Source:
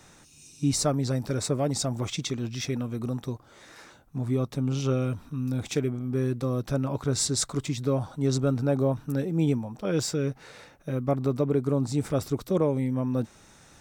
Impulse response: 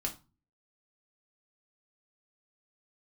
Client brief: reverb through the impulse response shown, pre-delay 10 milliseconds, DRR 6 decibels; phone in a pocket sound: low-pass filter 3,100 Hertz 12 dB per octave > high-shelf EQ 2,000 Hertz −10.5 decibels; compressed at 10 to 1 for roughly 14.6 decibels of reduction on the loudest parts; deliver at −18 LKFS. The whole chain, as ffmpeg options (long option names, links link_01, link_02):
-filter_complex "[0:a]acompressor=threshold=-35dB:ratio=10,asplit=2[link_01][link_02];[1:a]atrim=start_sample=2205,adelay=10[link_03];[link_02][link_03]afir=irnorm=-1:irlink=0,volume=-8dB[link_04];[link_01][link_04]amix=inputs=2:normalize=0,lowpass=3100,highshelf=frequency=2000:gain=-10.5,volume=21dB"